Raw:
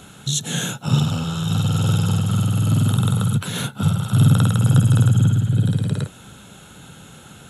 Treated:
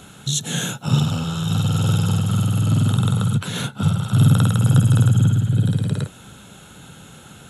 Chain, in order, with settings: 2.61–4.20 s: low-pass 10 kHz 12 dB/octave

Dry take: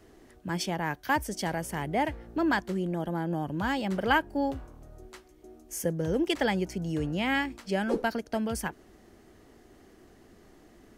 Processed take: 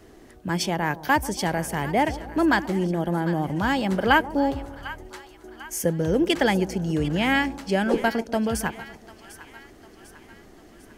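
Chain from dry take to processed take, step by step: two-band feedback delay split 920 Hz, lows 139 ms, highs 748 ms, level -15 dB; trim +6 dB

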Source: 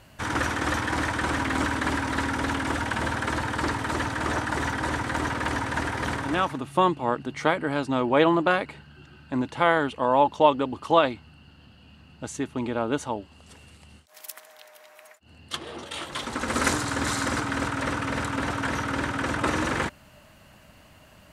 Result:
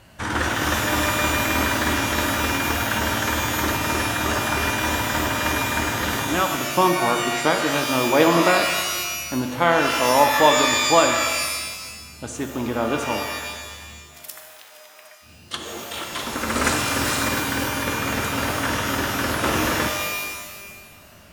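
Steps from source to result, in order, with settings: 17.29–17.99 s: comb of notches 650 Hz; pitch-shifted reverb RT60 1.3 s, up +12 st, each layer -2 dB, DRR 4.5 dB; trim +2 dB

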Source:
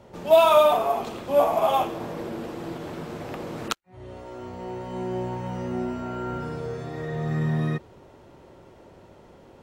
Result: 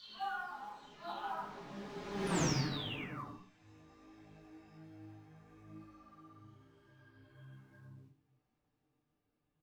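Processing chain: delay that grows with frequency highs early, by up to 998 ms; Doppler pass-by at 2.39 s, 57 m/s, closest 4.9 m; low-pass 6.9 kHz 24 dB/octave; peaking EQ 500 Hz -9 dB 1.7 oct; in parallel at -10 dB: short-mantissa float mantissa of 2-bit; on the sum: delay 79 ms -10.5 dB; on a send at -13 dB: reverberation RT60 0.40 s, pre-delay 96 ms; on the sum: detune thickener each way 24 cents; trim +12 dB

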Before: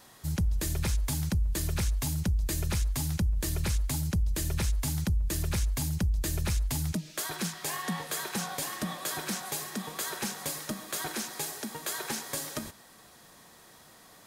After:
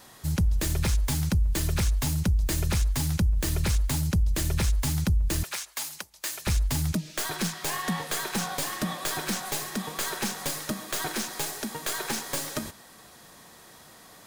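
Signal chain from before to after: tracing distortion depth 0.041 ms; 5.43–6.47 s: high-pass 870 Hz 12 dB/octave; trim +4 dB

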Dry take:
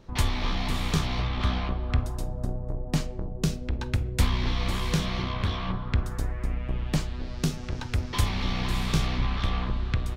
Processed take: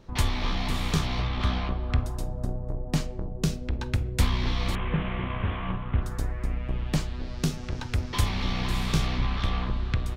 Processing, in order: 4.75–6.02 s: CVSD coder 16 kbps

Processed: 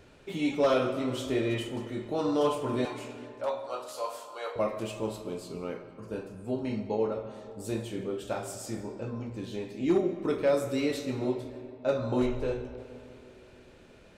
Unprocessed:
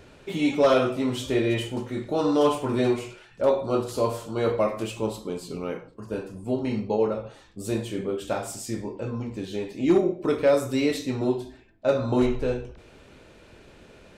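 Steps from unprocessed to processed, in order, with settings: 2.85–4.56 s: high-pass 610 Hz 24 dB/octave; on a send: reverberation RT60 2.9 s, pre-delay 95 ms, DRR 11.5 dB; on the sum: trim -5.5 dB

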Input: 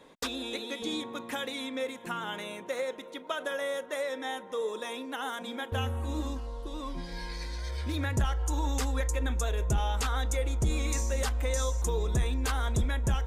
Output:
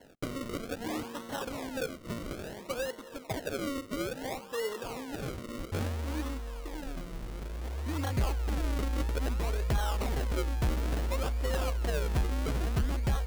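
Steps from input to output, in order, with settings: decimation with a swept rate 36×, swing 100% 0.59 Hz; trim -1.5 dB

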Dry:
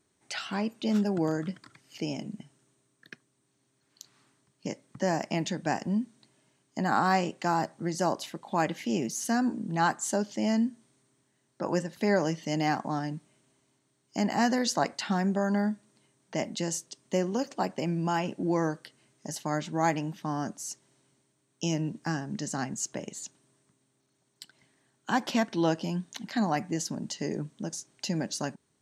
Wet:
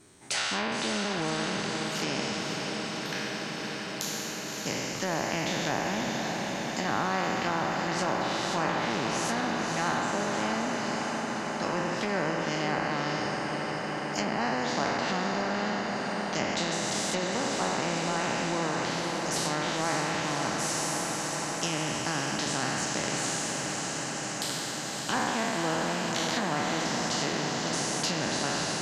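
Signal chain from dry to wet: spectral sustain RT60 1.50 s; low-pass that closes with the level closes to 1.4 kHz, closed at -21.5 dBFS; echo that smears into a reverb 558 ms, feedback 75%, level -7.5 dB; spectrum-flattening compressor 2:1; trim -3 dB

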